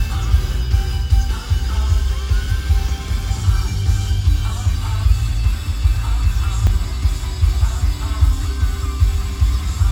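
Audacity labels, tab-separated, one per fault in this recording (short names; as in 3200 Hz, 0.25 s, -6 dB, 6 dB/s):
6.670000	6.670000	gap 2.1 ms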